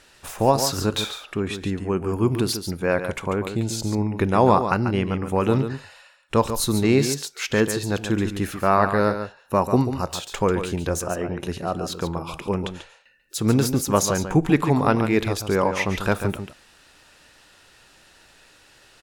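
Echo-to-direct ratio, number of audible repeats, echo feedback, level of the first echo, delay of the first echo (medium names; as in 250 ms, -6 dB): -9.0 dB, 1, no regular repeats, -9.0 dB, 141 ms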